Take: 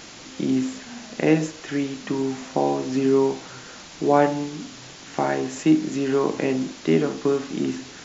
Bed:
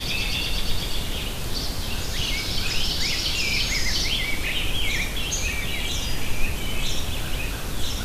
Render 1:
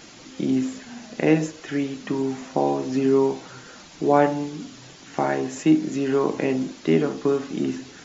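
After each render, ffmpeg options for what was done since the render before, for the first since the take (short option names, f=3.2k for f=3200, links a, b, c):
-af "afftdn=nr=6:nf=-42"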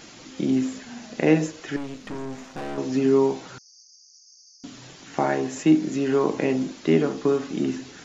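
-filter_complex "[0:a]asettb=1/sr,asplit=3[a][b][c];[a]atrim=end=1.764[d];[b]atrim=start=1.76:end=2.78,asetpts=PTS-STARTPTS,afade=t=in:d=0.004:c=qsin,afade=t=out:st=1.016:d=0.004:c=qsin,aeval=exprs='(tanh(31.6*val(0)+0.75)-tanh(0.75))/31.6':c=same[e];[c]atrim=start=2.776[f];[d][e]acrossfade=d=0.004:c1=hsin:c2=qsin[g];[g][f]acrossfade=d=0.004:c1=qsin:c2=hsin,asettb=1/sr,asplit=3[h][i][j];[h]atrim=end=3.584[k];[i]atrim=start=3.58:end=4.64,asetpts=PTS-STARTPTS,afade=t=in:d=0.004:c=qsin,afade=t=out:st=1.056:d=0.004:c=qsin,asuperpass=centerf=5500:order=20:qfactor=2.7[l];[j]atrim=start=4.636[m];[k][l]acrossfade=d=0.004:c1=hsin:c2=qsin[n];[n][m]acrossfade=d=0.004:c1=qsin:c2=hsin"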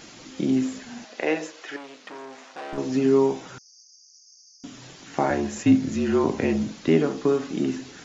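-filter_complex "[0:a]asettb=1/sr,asplit=3[a][b][c];[a]atrim=end=1.044[d];[b]atrim=start=1.04:end=2.73,asetpts=PTS-STARTPTS,afade=t=in:d=0.004:c=qsin,afade=t=out:st=1.686:d=0.004:c=qsin,highpass=520,lowpass=6.1k[e];[c]atrim=start=2.726[f];[d][e]acrossfade=d=0.004:c1=hsin:c2=qsin[g];[g][f]acrossfade=d=0.004:c1=qsin:c2=hsin,asettb=1/sr,asplit=3[h][i][j];[h]atrim=end=3.234[k];[i]atrim=start=3.23:end=4.8,asetpts=PTS-STARTPTS,afade=t=in:d=0.004:c=qsin,afade=t=out:st=1.566:d=0.004:c=qsin,bandreject=f=4.3k:w=7.9[l];[j]atrim=start=4.796[m];[k][l]acrossfade=d=0.004:c1=hsin:c2=qsin[n];[n][m]acrossfade=d=0.004:c1=qsin:c2=hsin,asettb=1/sr,asplit=3[o][p][q];[o]atrim=end=5.304[r];[p]atrim=start=5.3:end=6.89,asetpts=PTS-STARTPTS,afade=t=in:d=0.004:c=qsin,afade=t=out:st=1.586:d=0.004:c=qsin,afreqshift=-47[s];[q]atrim=start=6.886[t];[r][s]acrossfade=d=0.004:c1=hsin:c2=qsin[u];[u][t]acrossfade=d=0.004:c1=qsin:c2=hsin"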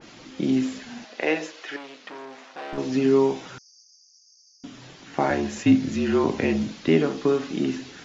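-af "lowpass=5k,adynamicequalizer=threshold=0.01:dfrequency=1900:dqfactor=0.7:tfrequency=1900:tqfactor=0.7:attack=5:release=100:ratio=0.375:range=2.5:mode=boostabove:tftype=highshelf"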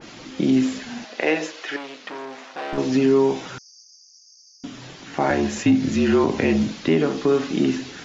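-af "acontrast=35,alimiter=limit=-9.5dB:level=0:latency=1:release=130"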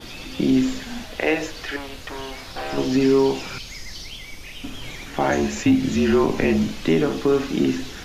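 -filter_complex "[1:a]volume=-12.5dB[a];[0:a][a]amix=inputs=2:normalize=0"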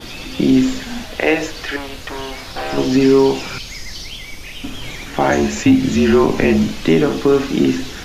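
-af "volume=5.5dB"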